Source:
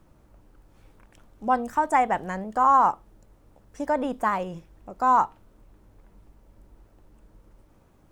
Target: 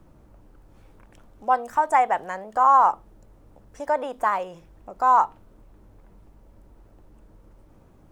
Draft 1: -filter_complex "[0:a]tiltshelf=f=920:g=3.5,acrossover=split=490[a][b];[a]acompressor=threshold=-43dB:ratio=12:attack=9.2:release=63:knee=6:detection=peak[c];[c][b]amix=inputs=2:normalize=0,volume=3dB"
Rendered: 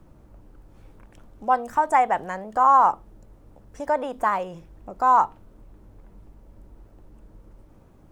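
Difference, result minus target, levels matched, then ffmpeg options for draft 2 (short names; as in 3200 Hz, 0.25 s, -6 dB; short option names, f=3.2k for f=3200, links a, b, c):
compressor: peak gain reduction -7.5 dB
-filter_complex "[0:a]tiltshelf=f=920:g=3.5,acrossover=split=490[a][b];[a]acompressor=threshold=-51dB:ratio=12:attack=9.2:release=63:knee=6:detection=peak[c];[c][b]amix=inputs=2:normalize=0,volume=3dB"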